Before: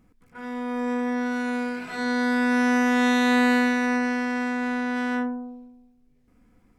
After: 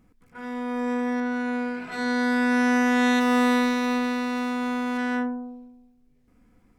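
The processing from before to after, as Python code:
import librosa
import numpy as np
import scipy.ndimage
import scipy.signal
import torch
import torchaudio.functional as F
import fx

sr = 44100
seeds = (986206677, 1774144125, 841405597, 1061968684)

y = fx.high_shelf(x, sr, hz=4200.0, db=-10.0, at=(1.2, 1.92))
y = fx.running_max(y, sr, window=9, at=(3.19, 4.97), fade=0.02)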